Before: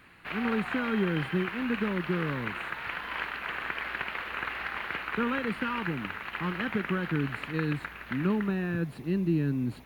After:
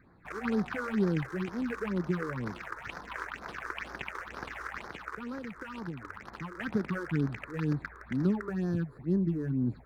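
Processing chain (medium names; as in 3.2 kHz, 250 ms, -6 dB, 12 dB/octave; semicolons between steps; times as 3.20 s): local Wiener filter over 15 samples; 4.86–6.61 s: compression, threshold -34 dBFS, peak gain reduction 9 dB; phase shifter stages 6, 2.1 Hz, lowest notch 180–2800 Hz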